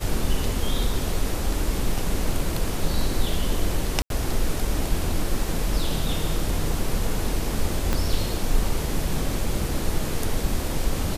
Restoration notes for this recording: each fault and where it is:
4.02–4.1 gap 82 ms
7.93 pop -9 dBFS

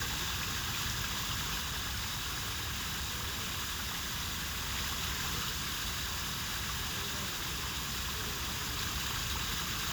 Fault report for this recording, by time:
1.59–4.71 clipped -33 dBFS
5.51–8.8 clipped -32 dBFS

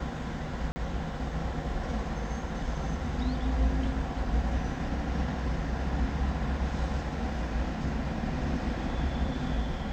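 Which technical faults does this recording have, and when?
0.72–0.76 gap 40 ms

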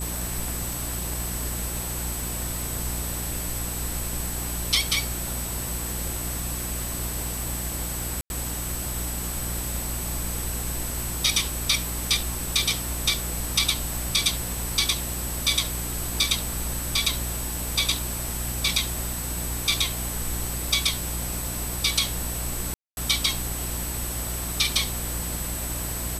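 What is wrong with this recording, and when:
hum 60 Hz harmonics 6 -33 dBFS
tone 8000 Hz -35 dBFS
0.73 pop
8.21–8.3 gap 91 ms
22.74–22.97 gap 0.231 s

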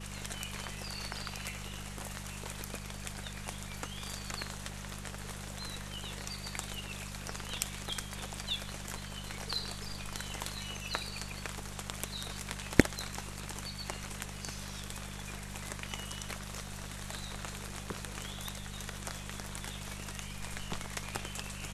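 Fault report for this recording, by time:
hum 50 Hz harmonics 4 -45 dBFS

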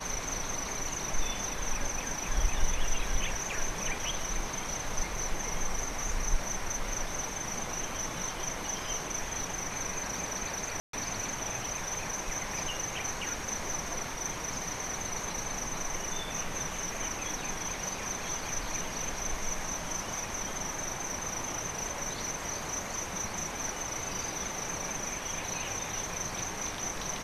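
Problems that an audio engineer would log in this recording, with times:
10.8–10.93 gap 0.133 s

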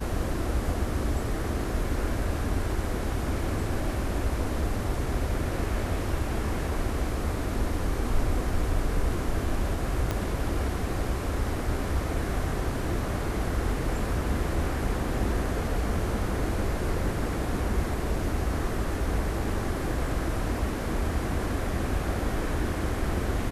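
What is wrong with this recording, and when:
10.11 pop -14 dBFS

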